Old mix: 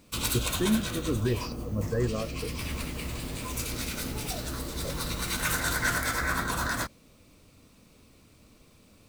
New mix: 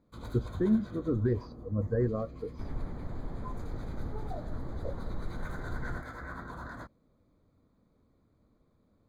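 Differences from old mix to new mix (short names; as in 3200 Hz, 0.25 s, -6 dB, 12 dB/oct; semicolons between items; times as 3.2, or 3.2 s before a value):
first sound -10.0 dB; second sound: add tilt -2.5 dB/oct; master: add running mean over 16 samples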